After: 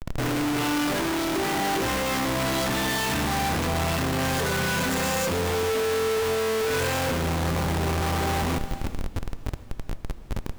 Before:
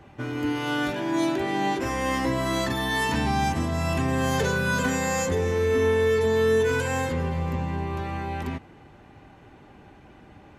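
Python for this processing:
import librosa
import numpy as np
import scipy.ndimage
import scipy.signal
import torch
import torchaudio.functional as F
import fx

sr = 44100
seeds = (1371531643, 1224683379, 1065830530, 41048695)

y = fx.schmitt(x, sr, flips_db=-41.5)
y = fx.rev_gated(y, sr, seeds[0], gate_ms=490, shape='flat', drr_db=11.0)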